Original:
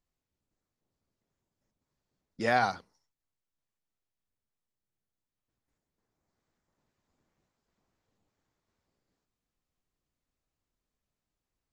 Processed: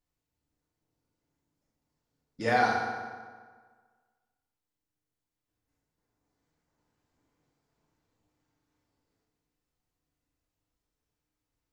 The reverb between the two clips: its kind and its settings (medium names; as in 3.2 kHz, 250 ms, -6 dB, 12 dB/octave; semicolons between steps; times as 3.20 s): FDN reverb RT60 1.6 s, low-frequency decay 1×, high-frequency decay 0.7×, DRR -2 dB; trim -2.5 dB